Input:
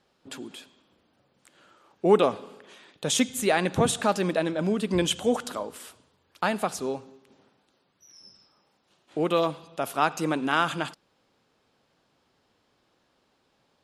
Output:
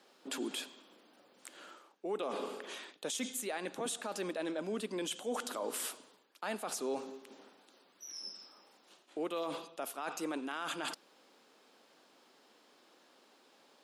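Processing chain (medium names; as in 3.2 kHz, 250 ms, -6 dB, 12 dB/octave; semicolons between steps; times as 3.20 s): reverse; compression 12:1, threshold -36 dBFS, peak gain reduction 23 dB; reverse; high-pass 240 Hz 24 dB/octave; treble shelf 6.1 kHz +5 dB; peak limiter -32.5 dBFS, peak gain reduction 8 dB; trim +4.5 dB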